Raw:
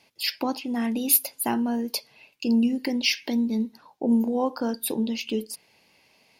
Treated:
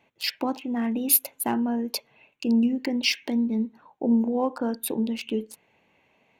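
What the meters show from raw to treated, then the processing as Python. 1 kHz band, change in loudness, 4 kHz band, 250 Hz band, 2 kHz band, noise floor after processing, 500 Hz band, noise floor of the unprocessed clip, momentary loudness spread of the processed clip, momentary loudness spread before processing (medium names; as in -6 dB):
-0.5 dB, -0.5 dB, -1.5 dB, 0.0 dB, -0.5 dB, -67 dBFS, 0.0 dB, -63 dBFS, 11 LU, 10 LU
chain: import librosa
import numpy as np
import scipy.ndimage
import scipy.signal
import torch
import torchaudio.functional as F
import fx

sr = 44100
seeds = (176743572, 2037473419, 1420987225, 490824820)

y = fx.wiener(x, sr, points=9)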